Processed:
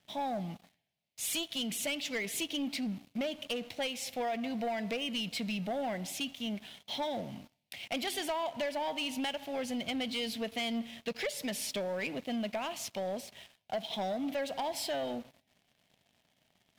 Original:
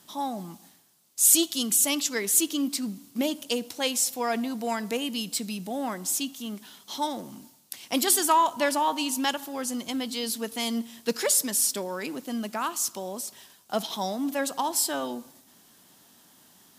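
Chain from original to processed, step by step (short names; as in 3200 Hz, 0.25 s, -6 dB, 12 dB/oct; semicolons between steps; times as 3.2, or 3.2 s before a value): EQ curve 110 Hz 0 dB, 340 Hz -14 dB, 660 Hz -1 dB, 1200 Hz -21 dB, 2200 Hz 0 dB, 3200 Hz -5 dB, 7600 Hz -24 dB; compressor 6:1, threshold -37 dBFS, peak gain reduction 11.5 dB; sample leveller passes 3; gain -3.5 dB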